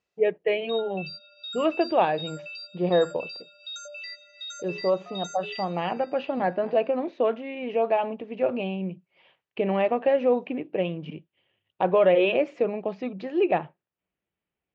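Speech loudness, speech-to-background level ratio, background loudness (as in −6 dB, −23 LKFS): −26.0 LKFS, 12.0 dB, −38.0 LKFS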